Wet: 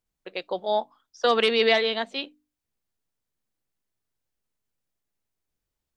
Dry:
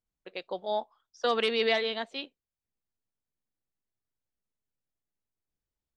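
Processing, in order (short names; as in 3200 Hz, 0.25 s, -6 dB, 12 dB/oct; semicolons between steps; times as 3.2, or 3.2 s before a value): notches 50/100/150/200/250/300 Hz; gain +6 dB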